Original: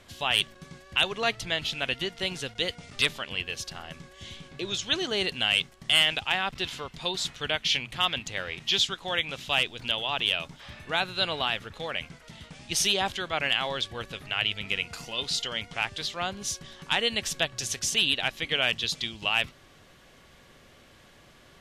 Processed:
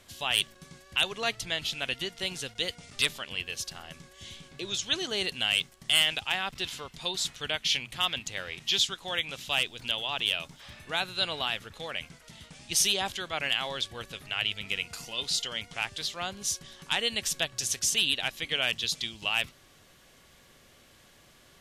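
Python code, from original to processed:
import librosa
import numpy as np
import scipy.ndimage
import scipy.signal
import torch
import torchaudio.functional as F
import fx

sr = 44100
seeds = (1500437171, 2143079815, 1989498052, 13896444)

y = fx.high_shelf(x, sr, hz=5300.0, db=10.5)
y = F.gain(torch.from_numpy(y), -4.5).numpy()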